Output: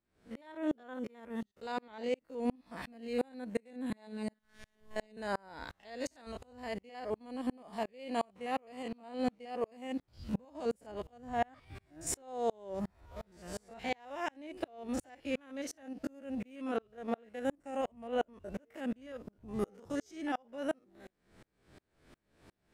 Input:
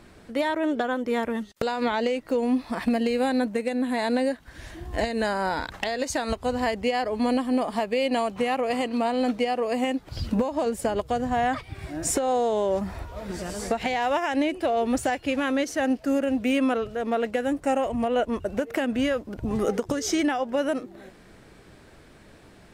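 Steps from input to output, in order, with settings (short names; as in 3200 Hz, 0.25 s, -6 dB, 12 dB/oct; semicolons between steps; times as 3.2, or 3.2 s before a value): stepped spectrum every 50 ms; 3.9–5.17 robotiser 215 Hz; dB-ramp tremolo swelling 2.8 Hz, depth 36 dB; gain -3 dB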